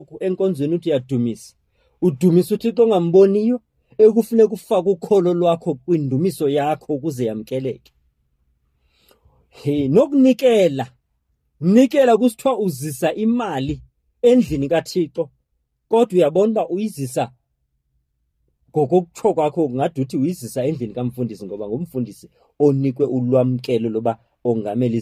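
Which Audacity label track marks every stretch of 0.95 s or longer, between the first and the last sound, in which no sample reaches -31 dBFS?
7.760000	9.590000	silence
17.260000	18.750000	silence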